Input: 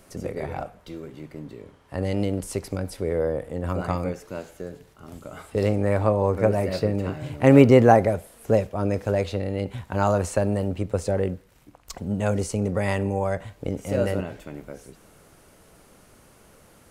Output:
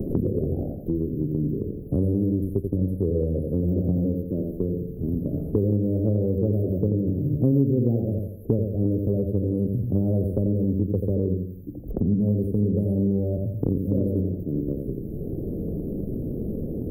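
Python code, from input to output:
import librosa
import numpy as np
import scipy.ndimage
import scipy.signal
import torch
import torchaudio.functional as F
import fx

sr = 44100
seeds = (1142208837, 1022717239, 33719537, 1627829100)

p1 = scipy.signal.sosfilt(scipy.signal.cheby2(4, 50, [960.0, 7900.0], 'bandstop', fs=sr, output='sos'), x)
p2 = p1 + fx.echo_feedback(p1, sr, ms=86, feedback_pct=32, wet_db=-5.0, dry=0)
p3 = fx.band_squash(p2, sr, depth_pct=100)
y = p3 * librosa.db_to_amplitude(3.0)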